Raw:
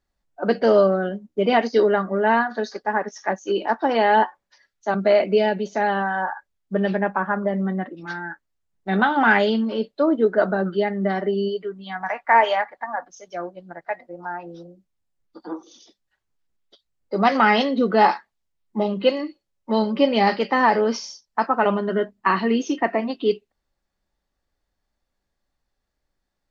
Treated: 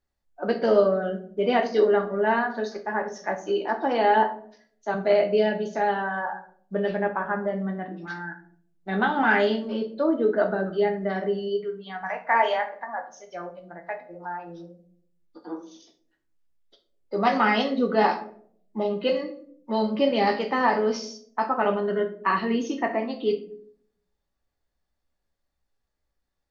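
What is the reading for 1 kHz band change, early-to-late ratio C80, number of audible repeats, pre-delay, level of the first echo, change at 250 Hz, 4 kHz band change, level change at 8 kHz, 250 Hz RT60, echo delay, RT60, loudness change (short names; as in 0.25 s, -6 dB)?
-4.0 dB, 16.0 dB, none, 12 ms, none, -4.5 dB, -4.5 dB, n/a, 0.80 s, none, 0.60 s, -4.0 dB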